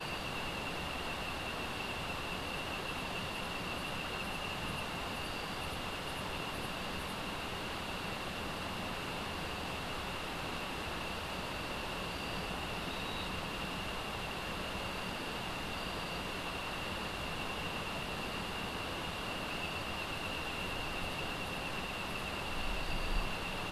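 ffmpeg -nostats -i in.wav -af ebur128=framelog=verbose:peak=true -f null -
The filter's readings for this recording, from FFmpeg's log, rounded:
Integrated loudness:
  I:         -38.6 LUFS
  Threshold: -48.6 LUFS
Loudness range:
  LRA:         1.0 LU
  Threshold: -58.6 LUFS
  LRA low:   -39.1 LUFS
  LRA high:  -38.1 LUFS
True peak:
  Peak:      -22.1 dBFS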